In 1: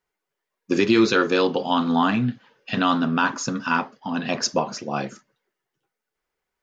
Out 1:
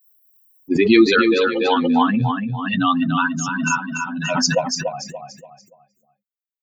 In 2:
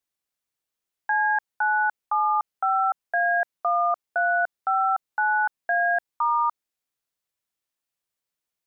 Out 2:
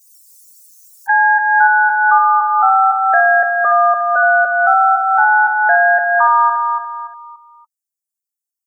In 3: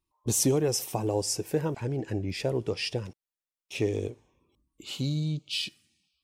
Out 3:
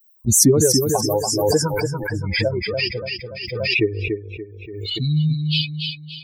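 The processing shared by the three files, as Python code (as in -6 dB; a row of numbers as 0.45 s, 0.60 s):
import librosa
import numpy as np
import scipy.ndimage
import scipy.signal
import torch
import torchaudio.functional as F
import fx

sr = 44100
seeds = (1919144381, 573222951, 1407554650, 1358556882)

p1 = fx.bin_expand(x, sr, power=3.0)
p2 = p1 + fx.echo_feedback(p1, sr, ms=288, feedback_pct=35, wet_db=-5.5, dry=0)
p3 = fx.pre_swell(p2, sr, db_per_s=36.0)
y = p3 * 10.0 ** (-1.5 / 20.0) / np.max(np.abs(p3))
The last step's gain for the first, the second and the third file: +7.0 dB, +11.0 dB, +13.5 dB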